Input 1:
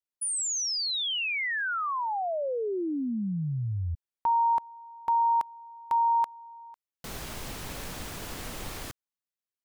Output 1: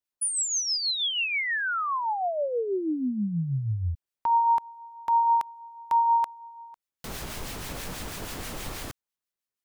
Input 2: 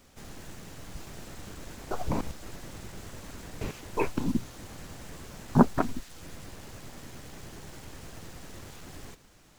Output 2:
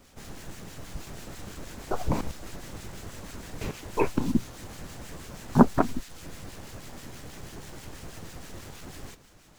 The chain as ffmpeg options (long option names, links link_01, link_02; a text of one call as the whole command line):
ffmpeg -i in.wav -filter_complex "[0:a]acrossover=split=1400[link_01][link_02];[link_01]aeval=exprs='val(0)*(1-0.5/2+0.5/2*cos(2*PI*6.2*n/s))':channel_layout=same[link_03];[link_02]aeval=exprs='val(0)*(1-0.5/2-0.5/2*cos(2*PI*6.2*n/s))':channel_layout=same[link_04];[link_03][link_04]amix=inputs=2:normalize=0,volume=4.5dB" out.wav